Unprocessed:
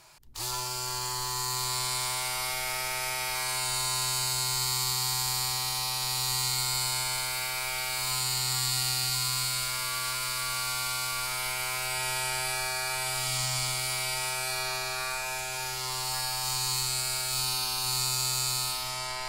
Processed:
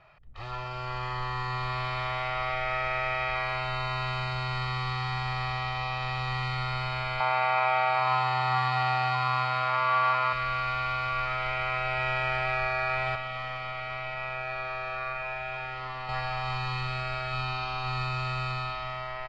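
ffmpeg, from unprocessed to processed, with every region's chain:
-filter_complex "[0:a]asettb=1/sr,asplit=3[a][b][c];[a]atrim=end=7.204[d];[b]atrim=start=7.2:end=10.33,asetpts=PTS-STARTPTS,afade=t=in:d=0.004:c=qsin,afade=t=out:st=3.126:d=0.004:c=qsin,highpass=120,equalizer=f=880:t=o:w=0.84:g=14[e];[c]atrim=start=10.326[f];[d][e]acrossfade=d=0.004:c1=hsin:c2=qsin[g];[g][f]acrossfade=d=0.004:c1=qsin:c2=hsin,asettb=1/sr,asplit=3[h][i][j];[h]atrim=end=13.154[k];[i]atrim=start=13.15:end=16.09,asetpts=PTS-STARTPTS,afade=t=in:d=0.004:c=qsin,afade=t=out:st=2.936:d=0.004:c=qsin,acrossover=split=470|4200[l][m][n];[l]acompressor=threshold=-51dB:ratio=4[o];[m]acompressor=threshold=-36dB:ratio=4[p];[n]acompressor=threshold=-43dB:ratio=4[q];[o][p][q]amix=inputs=3:normalize=0,aeval=exprs='clip(val(0),-1,0.0133)':c=same[r];[j]atrim=start=16.086[s];[k][r]acrossfade=d=0.004:c1=hsin:c2=qsin[t];[t][s]acrossfade=d=0.004:c1=qsin:c2=hsin,aecho=1:1:1.6:0.62,dynaudnorm=f=210:g=7:m=4.5dB,lowpass=f=2.6k:w=0.5412,lowpass=f=2.6k:w=1.3066"

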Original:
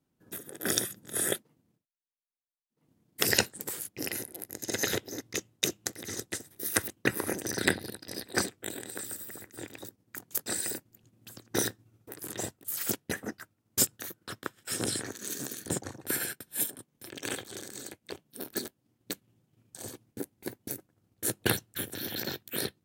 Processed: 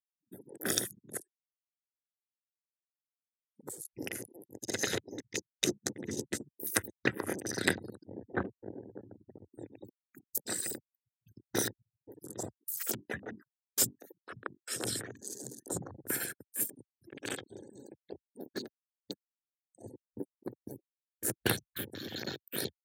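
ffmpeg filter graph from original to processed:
-filter_complex "[0:a]asettb=1/sr,asplit=3[a][b][c];[a]atrim=end=1.174[d];[b]atrim=start=1.17:end=3.63,asetpts=PTS-STARTPTS,afade=t=in:d=0.004:c=qsin,afade=t=out:st=2.456:d=0.004:c=qsin,acompressor=threshold=-38dB:ratio=16:attack=3.2:release=140:knee=1:detection=peak,aeval=exprs='(mod(33.5*val(0)+1,2)-1)/33.5':c=same,aeval=exprs='val(0)*pow(10,-36*(0.5-0.5*cos(2*PI*1.6*n/s))/20)':c=same[e];[c]atrim=start=3.626[f];[d][e]acrossfade=d=0.004:c1=hsin:c2=qsin[g];[g][f]acrossfade=d=0.004:c1=qsin:c2=hsin,asettb=1/sr,asplit=3[h][i][j];[h]atrim=end=5.674[k];[i]atrim=start=5.67:end=6.5,asetpts=PTS-STARTPTS,afade=t=in:d=0.004:c=qsin,afade=t=out:st=0.826:d=0.004:c=qsin,equalizer=f=210:t=o:w=2.2:g=8.5,asplit=2[l][m];[m]adelay=14,volume=-10dB[n];[l][n]amix=inputs=2:normalize=0,atrim=end_sample=36603[o];[j]atrim=start=6.496[p];[k][o]acrossfade=d=0.004:c1=hsin:c2=qsin[q];[q][p]acrossfade=d=0.004:c1=qsin:c2=hsin,asettb=1/sr,asplit=3[r][s][t];[r]atrim=end=8.044[u];[s]atrim=start=8.04:end=9.52,asetpts=PTS-STARTPTS,afade=t=in:d=0.004:c=qsin,afade=t=out:st=1.476:d=0.004:c=qsin,lowpass=f=1.6k:w=0.5412,lowpass=f=1.6k:w=1.3066,lowshelf=f=80:g=9.5[v];[t]atrim=start=9.516[w];[u][v]acrossfade=d=0.004:c1=hsin:c2=qsin[x];[x][w]acrossfade=d=0.004:c1=qsin:c2=hsin,asettb=1/sr,asplit=3[y][z][aa];[y]atrim=end=12.864[ab];[z]atrim=start=12.86:end=15.97,asetpts=PTS-STARTPTS,afade=t=in:d=0.004:c=qsin,afade=t=out:st=3.106:d=0.004:c=qsin,bandreject=f=50:t=h:w=6,bandreject=f=100:t=h:w=6,bandreject=f=150:t=h:w=6,bandreject=f=200:t=h:w=6,bandreject=f=250:t=h:w=6,bandreject=f=300:t=h:w=6,bandreject=f=350:t=h:w=6,acrossover=split=240[ac][ad];[ac]adelay=40[ae];[ae][ad]amix=inputs=2:normalize=0,atrim=end_sample=137151[af];[aa]atrim=start=15.966[ag];[ab][af]acrossfade=d=0.004:c1=hsin:c2=qsin[ah];[ah][ag]acrossfade=d=0.004:c1=qsin:c2=hsin,highpass=f=69:w=0.5412,highpass=f=69:w=1.3066,afftfilt=real='re*gte(hypot(re,im),0.00891)':imag='im*gte(hypot(re,im),0.00891)':win_size=1024:overlap=0.75,afwtdn=0.00562,volume=-2.5dB"

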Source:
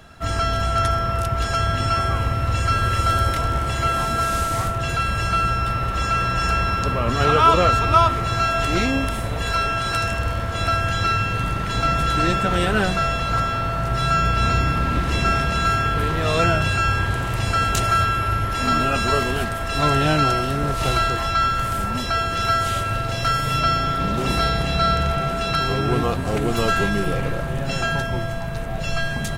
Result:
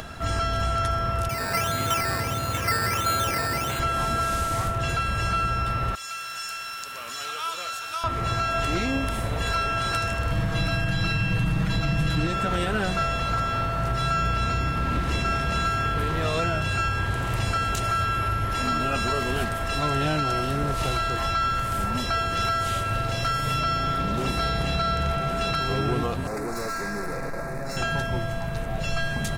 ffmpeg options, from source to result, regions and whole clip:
-filter_complex "[0:a]asettb=1/sr,asplit=3[a][b][c];[a]atrim=end=1.294[d];[b]atrim=start=1.29:end=3.8,asetpts=PTS-STARTPTS,afade=t=in:d=0.004:c=qsin,afade=t=out:st=2.506:d=0.004:c=qsin,highpass=130,acrusher=samples=11:mix=1:aa=0.000001:lfo=1:lforange=6.6:lforate=1.5[e];[c]atrim=start=3.796[f];[d][e]acrossfade=d=0.004:c1=hsin:c2=qsin[g];[g][f]acrossfade=d=0.004:c1=qsin:c2=hsin,asettb=1/sr,asplit=3[h][i][j];[h]atrim=end=5.954[k];[i]atrim=start=5.95:end=8.04,asetpts=PTS-STARTPTS,afade=t=in:d=0.004:c=qsin,afade=t=out:st=2.086:d=0.004:c=qsin,aderivative,asplit=8[l][m][n][o][p][q][r][s];[m]adelay=121,afreqshift=55,volume=-14dB[t];[n]adelay=242,afreqshift=110,volume=-17.9dB[u];[o]adelay=363,afreqshift=165,volume=-21.8dB[v];[p]adelay=484,afreqshift=220,volume=-25.6dB[w];[q]adelay=605,afreqshift=275,volume=-29.5dB[x];[r]adelay=726,afreqshift=330,volume=-33.4dB[y];[s]adelay=847,afreqshift=385,volume=-37.3dB[z];[l][t][u][v][w][x][y][z]amix=inputs=8:normalize=0,atrim=end_sample=92169[aa];[j]atrim=start=8.036[ab];[k][aa]acrossfade=d=0.004:c1=hsin:c2=qsin[ac];[ac][ab]acrossfade=d=0.004:c1=qsin:c2=hsin,asettb=1/sr,asplit=3[ad][ae][af];[ad]atrim=end=10.314[ag];[ae]atrim=start=10.31:end=12.27,asetpts=PTS-STARTPTS,afade=t=in:d=0.004:c=qsin,afade=t=out:st=1.956:d=0.004:c=qsin,lowshelf=f=300:t=q:w=1.5:g=6,aecho=1:1:6.3:0.91,atrim=end_sample=86436[ah];[af]atrim=start=12.266[ai];[ag][ah]acrossfade=d=0.004:c1=hsin:c2=qsin[aj];[aj][ai]acrossfade=d=0.004:c1=qsin:c2=hsin,asettb=1/sr,asplit=3[ak][al][am];[ak]atrim=end=26.274[an];[al]atrim=start=26.27:end=27.77,asetpts=PTS-STARTPTS,afade=t=in:d=0.004:c=qsin,afade=t=out:st=1.496:d=0.004:c=qsin,equalizer=f=79:w=0.76:g=-13,asoftclip=type=hard:threshold=-26dB,asuperstop=centerf=3100:order=4:qfactor=1.5[ao];[am]atrim=start=27.766[ap];[an][ao]acrossfade=d=0.004:c1=hsin:c2=qsin[aq];[aq][ap]acrossfade=d=0.004:c1=qsin:c2=hsin,acontrast=39,alimiter=limit=-8.5dB:level=0:latency=1:release=244,acompressor=mode=upward:threshold=-21dB:ratio=2.5,volume=-7.5dB"

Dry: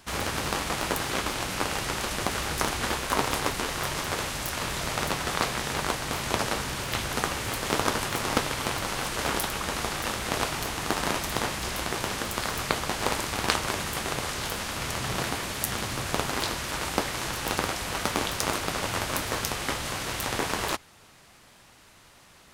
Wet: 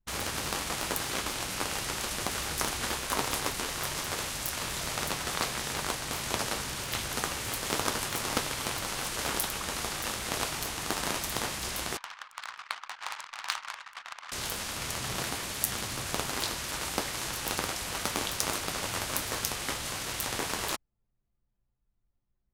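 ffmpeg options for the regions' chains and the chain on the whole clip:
-filter_complex "[0:a]asettb=1/sr,asplit=3[a][b][c];[a]atrim=end=11.974[d];[b]atrim=start=11.97:end=14.32,asetpts=PTS-STARTPTS,afade=t=in:d=0.004:c=qsin,afade=t=out:st=2.346:d=0.004:c=qsin,highpass=f=950:w=0.5412,highpass=f=950:w=1.3066,equalizer=f=4.2k:t=o:w=2.8:g=-3,adynamicsmooth=sensitivity=4:basefreq=3.2k[e];[c]atrim=start=14.316[f];[d][e]acrossfade=d=0.004:c1=hsin:c2=qsin[g];[g][f]acrossfade=d=0.004:c1=qsin:c2=hsin,anlmdn=2.51,highshelf=f=3.6k:g=7.5,volume=-6dB"

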